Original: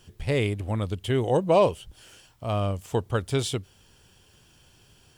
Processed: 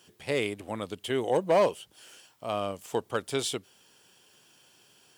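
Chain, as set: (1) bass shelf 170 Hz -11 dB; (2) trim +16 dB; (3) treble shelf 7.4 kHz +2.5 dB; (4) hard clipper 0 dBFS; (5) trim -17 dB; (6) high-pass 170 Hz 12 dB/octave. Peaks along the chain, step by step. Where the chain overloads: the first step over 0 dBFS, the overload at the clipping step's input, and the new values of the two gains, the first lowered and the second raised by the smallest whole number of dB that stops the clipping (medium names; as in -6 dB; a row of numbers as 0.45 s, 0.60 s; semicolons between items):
-9.5 dBFS, +6.5 dBFS, +6.5 dBFS, 0.0 dBFS, -17.0 dBFS, -13.0 dBFS; step 2, 6.5 dB; step 2 +9 dB, step 5 -10 dB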